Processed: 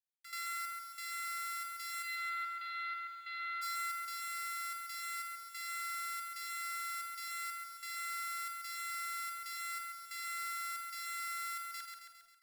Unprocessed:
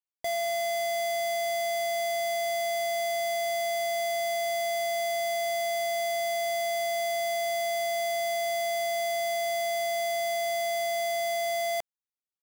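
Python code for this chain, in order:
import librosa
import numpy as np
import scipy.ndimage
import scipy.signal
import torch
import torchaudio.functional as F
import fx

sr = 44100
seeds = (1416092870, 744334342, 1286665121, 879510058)

y = fx.lower_of_two(x, sr, delay_ms=4.0)
y = fx.steep_lowpass(y, sr, hz=4100.0, slope=72, at=(2.02, 3.61), fade=0.02)
y = fx.dereverb_blind(y, sr, rt60_s=0.53)
y = scipy.signal.sosfilt(scipy.signal.butter(12, 1400.0, 'highpass', fs=sr, output='sos'), y)
y = fx.rider(y, sr, range_db=10, speed_s=0.5)
y = fx.step_gate(y, sr, bpm=92, pattern='x.xx..xxxx.xxx', floor_db=-12.0, edge_ms=4.5)
y = fx.doubler(y, sr, ms=49.0, db=-10.0)
y = fx.echo_feedback(y, sr, ms=135, feedback_pct=55, wet_db=-5.0)
y = fx.echo_crushed(y, sr, ms=80, feedback_pct=55, bits=9, wet_db=-14.0)
y = F.gain(torch.from_numpy(y), -5.5).numpy()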